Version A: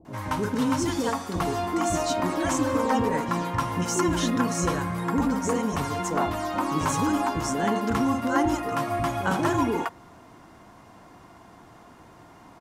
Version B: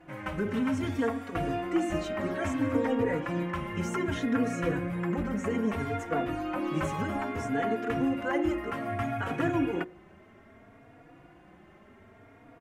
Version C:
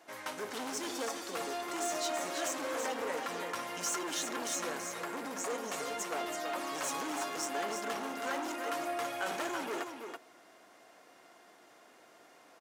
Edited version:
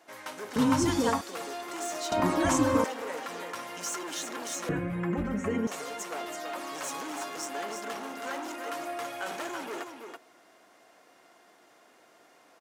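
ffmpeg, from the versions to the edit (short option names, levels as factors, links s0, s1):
-filter_complex "[0:a]asplit=2[s0][s1];[2:a]asplit=4[s2][s3][s4][s5];[s2]atrim=end=0.562[s6];[s0]atrim=start=0.558:end=1.212[s7];[s3]atrim=start=1.208:end=2.122[s8];[s1]atrim=start=2.118:end=2.842[s9];[s4]atrim=start=2.838:end=4.692[s10];[1:a]atrim=start=4.688:end=5.672[s11];[s5]atrim=start=5.668[s12];[s6][s7]acrossfade=d=0.004:c1=hsin:c2=hsin[s13];[s13][s8]acrossfade=d=0.004:c1=hsin:c2=hsin[s14];[s14][s9]acrossfade=d=0.004:c1=hsin:c2=hsin[s15];[s15][s10]acrossfade=d=0.004:c1=hsin:c2=hsin[s16];[s16][s11]acrossfade=d=0.004:c1=hsin:c2=hsin[s17];[s17][s12]acrossfade=d=0.004:c1=hsin:c2=hsin"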